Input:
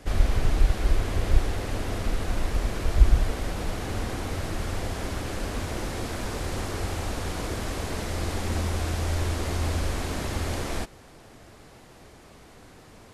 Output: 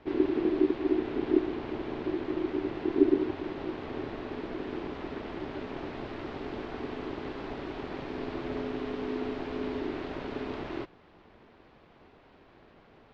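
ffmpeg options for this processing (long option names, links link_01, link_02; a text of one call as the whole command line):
ffmpeg -i in.wav -af "lowpass=frequency=3600:width=0.5412,lowpass=frequency=3600:width=1.3066,aeval=exprs='val(0)*sin(2*PI*340*n/s)':channel_layout=same,volume=-4.5dB" out.wav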